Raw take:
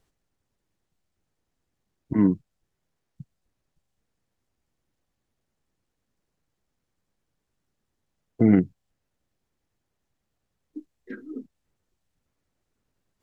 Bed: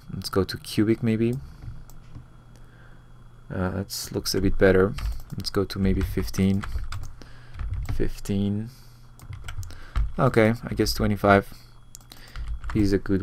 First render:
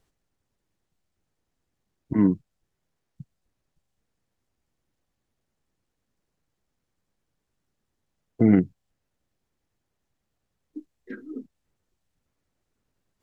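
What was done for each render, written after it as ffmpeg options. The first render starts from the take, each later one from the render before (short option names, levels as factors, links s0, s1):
-af anull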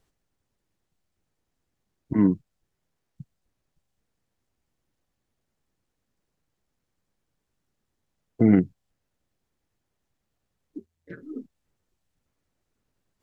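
-filter_complex "[0:a]asettb=1/sr,asplit=3[s0][s1][s2];[s0]atrim=end=10.784[s3];[s1]atrim=start=10.78:end=11.23,asetpts=PTS-STARTPTS,afade=t=in:d=0.004:c=qsin,afade=t=out:st=0.446:d=0.004:c=qsin,aeval=exprs='val(0)*sin(2*PI*83*n/s)':c=same[s4];[s2]atrim=start=11.226[s5];[s3][s4]acrossfade=d=0.004:c1=hsin:c2=qsin[s6];[s6][s5]acrossfade=d=0.004:c1=qsin:c2=hsin"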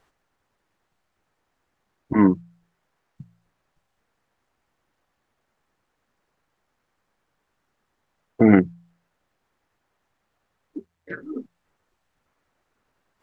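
-af "equalizer=f=1200:w=0.42:g=13.5,bandreject=f=57.08:t=h:w=4,bandreject=f=114.16:t=h:w=4,bandreject=f=171.24:t=h:w=4"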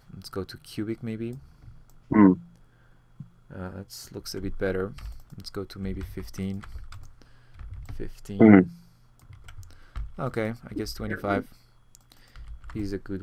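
-filter_complex "[1:a]volume=0.316[s0];[0:a][s0]amix=inputs=2:normalize=0"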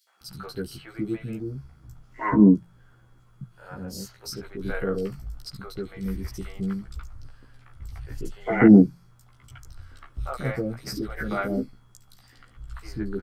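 -filter_complex "[0:a]asplit=2[s0][s1];[s1]adelay=15,volume=0.794[s2];[s0][s2]amix=inputs=2:normalize=0,acrossover=split=560|3200[s3][s4][s5];[s4]adelay=70[s6];[s3]adelay=210[s7];[s7][s6][s5]amix=inputs=3:normalize=0"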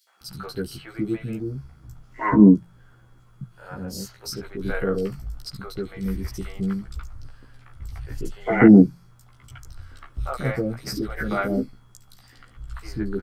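-af "volume=1.41,alimiter=limit=0.794:level=0:latency=1"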